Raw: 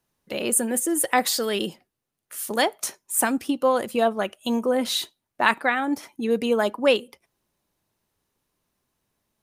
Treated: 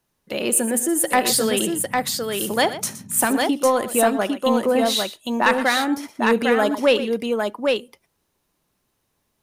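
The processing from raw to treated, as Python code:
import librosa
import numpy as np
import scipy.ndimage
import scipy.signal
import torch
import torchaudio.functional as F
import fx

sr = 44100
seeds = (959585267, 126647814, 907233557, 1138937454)

y = 10.0 ** (-8.5 / 20.0) * np.tanh(x / 10.0 ** (-8.5 / 20.0))
y = fx.echo_multitap(y, sr, ms=(70, 119, 803), db=(-19.5, -14.0, -3.5))
y = fx.dmg_noise_band(y, sr, seeds[0], low_hz=100.0, high_hz=250.0, level_db=-44.0, at=(1.27, 3.25), fade=0.02)
y = y * 10.0 ** (3.0 / 20.0)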